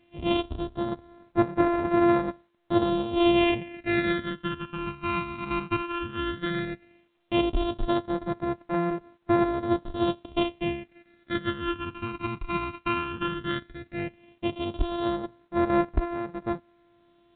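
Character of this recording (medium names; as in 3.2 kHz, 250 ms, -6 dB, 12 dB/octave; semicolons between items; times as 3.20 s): a buzz of ramps at a fixed pitch in blocks of 128 samples; phasing stages 12, 0.14 Hz, lowest notch 570–3100 Hz; A-law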